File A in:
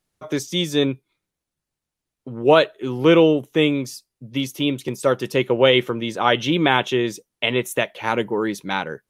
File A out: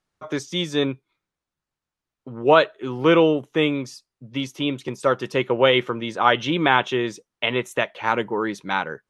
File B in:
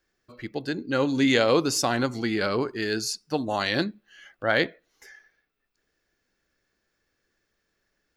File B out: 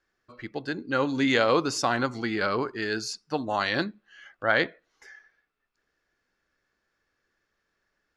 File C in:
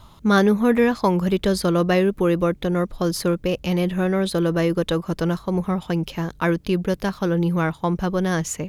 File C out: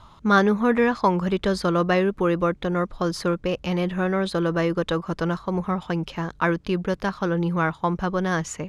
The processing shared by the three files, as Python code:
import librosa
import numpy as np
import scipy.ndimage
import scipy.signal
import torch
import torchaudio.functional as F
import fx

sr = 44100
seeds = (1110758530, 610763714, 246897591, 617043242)

y = scipy.signal.sosfilt(scipy.signal.butter(2, 7400.0, 'lowpass', fs=sr, output='sos'), x)
y = fx.peak_eq(y, sr, hz=1200.0, db=6.5, octaves=1.4)
y = y * 10.0 ** (-3.5 / 20.0)